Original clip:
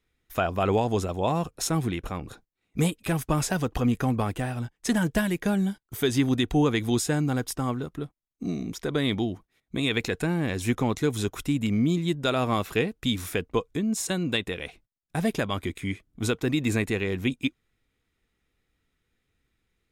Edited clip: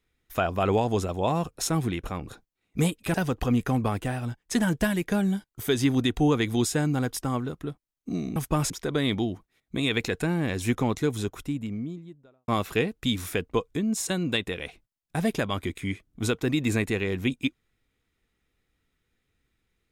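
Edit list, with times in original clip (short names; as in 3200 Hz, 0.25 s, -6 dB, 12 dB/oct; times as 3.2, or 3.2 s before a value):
3.14–3.48 move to 8.7
10.78–12.48 studio fade out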